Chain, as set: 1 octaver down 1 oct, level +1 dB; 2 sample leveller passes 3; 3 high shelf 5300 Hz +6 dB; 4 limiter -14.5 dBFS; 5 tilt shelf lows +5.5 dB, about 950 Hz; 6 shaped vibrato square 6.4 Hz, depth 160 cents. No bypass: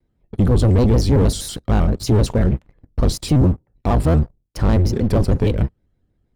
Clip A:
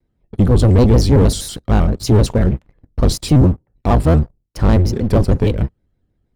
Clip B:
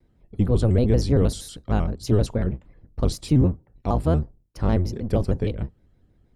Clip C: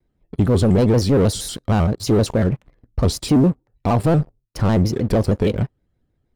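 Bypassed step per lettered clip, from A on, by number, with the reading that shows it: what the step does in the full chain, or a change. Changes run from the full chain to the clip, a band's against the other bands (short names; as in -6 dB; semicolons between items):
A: 4, mean gain reduction 2.0 dB; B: 2, crest factor change +5.0 dB; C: 1, 125 Hz band -3.5 dB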